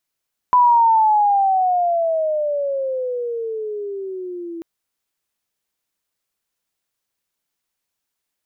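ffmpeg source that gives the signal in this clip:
-f lavfi -i "aevalsrc='pow(10,(-9-18.5*t/4.09)/20)*sin(2*PI*1000*4.09/log(330/1000)*(exp(log(330/1000)*t/4.09)-1))':d=4.09:s=44100"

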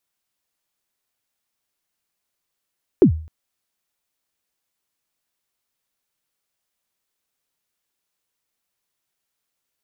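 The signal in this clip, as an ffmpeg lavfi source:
-f lavfi -i "aevalsrc='0.596*pow(10,-3*t/0.44)*sin(2*PI*(430*0.096/log(79/430)*(exp(log(79/430)*min(t,0.096)/0.096)-1)+79*max(t-0.096,0)))':d=0.26:s=44100"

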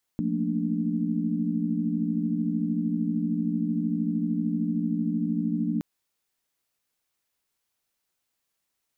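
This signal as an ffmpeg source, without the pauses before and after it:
-f lavfi -i "aevalsrc='0.0335*(sin(2*PI*174.61*t)+sin(2*PI*220*t)+sin(2*PI*233.08*t)+sin(2*PI*293.66*t))':d=5.62:s=44100"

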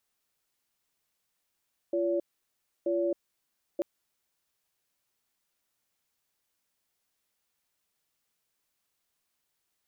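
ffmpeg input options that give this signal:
-f lavfi -i "aevalsrc='0.0398*(sin(2*PI*344*t)+sin(2*PI*569*t))*clip(min(mod(t,0.93),0.27-mod(t,0.93))/0.005,0,1)':d=1.89:s=44100"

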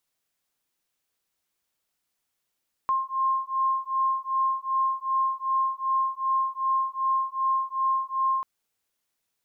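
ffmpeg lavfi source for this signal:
-f lavfi -i "aevalsrc='0.0501*(sin(2*PI*1060*t)+sin(2*PI*1062.6*t))':d=5.54:s=44100"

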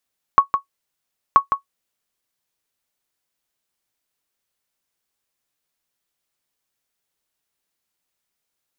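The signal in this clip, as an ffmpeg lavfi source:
-f lavfi -i "aevalsrc='0.841*(sin(2*PI*1110*mod(t,0.98))*exp(-6.91*mod(t,0.98)/0.11)+0.422*sin(2*PI*1110*max(mod(t,0.98)-0.16,0))*exp(-6.91*max(mod(t,0.98)-0.16,0)/0.11))':d=1.96:s=44100"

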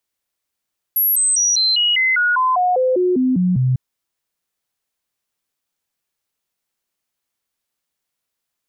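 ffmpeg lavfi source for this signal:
-f lavfi -i "aevalsrc='0.224*clip(min(mod(t,0.2),0.2-mod(t,0.2))/0.005,0,1)*sin(2*PI*11600*pow(2,-floor(t/0.2)/2)*mod(t,0.2))':d=2.8:s=44100"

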